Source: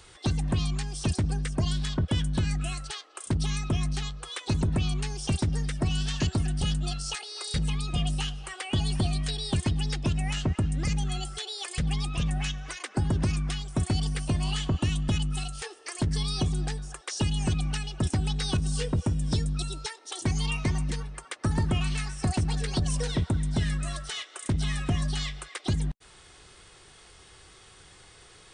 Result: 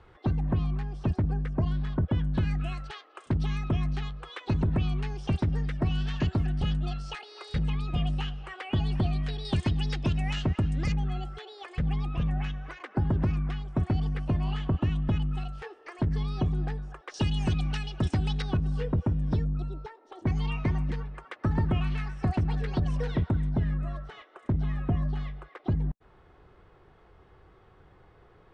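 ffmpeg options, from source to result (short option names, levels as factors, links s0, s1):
-af "asetnsamples=n=441:p=0,asendcmd='2.34 lowpass f 2300;9.45 lowpass f 4000;10.92 lowpass f 1700;17.14 lowpass f 3800;18.42 lowpass f 1600;19.45 lowpass f 1000;20.27 lowpass f 2000;23.49 lowpass f 1100',lowpass=1400"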